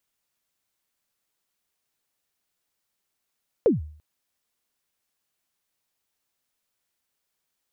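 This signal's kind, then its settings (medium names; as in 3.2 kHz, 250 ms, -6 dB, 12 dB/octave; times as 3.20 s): kick drum length 0.34 s, from 530 Hz, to 76 Hz, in 149 ms, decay 0.51 s, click off, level -12 dB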